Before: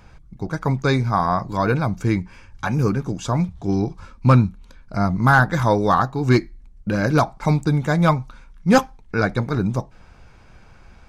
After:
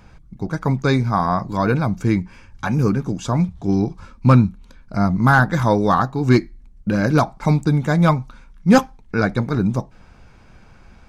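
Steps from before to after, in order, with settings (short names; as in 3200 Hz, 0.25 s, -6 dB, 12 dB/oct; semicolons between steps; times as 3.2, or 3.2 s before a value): bell 220 Hz +4 dB 1 oct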